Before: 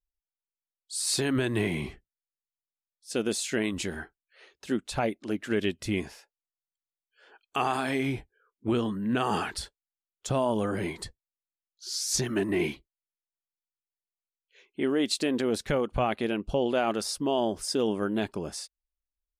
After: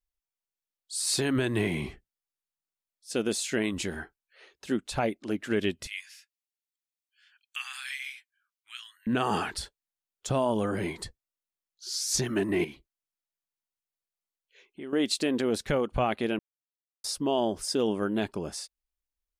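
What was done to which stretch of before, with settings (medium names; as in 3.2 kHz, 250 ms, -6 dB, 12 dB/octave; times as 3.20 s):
5.87–9.07 s: inverse Chebyshev high-pass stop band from 540 Hz, stop band 60 dB
12.64–14.93 s: compression 2:1, threshold -46 dBFS
16.39–17.04 s: mute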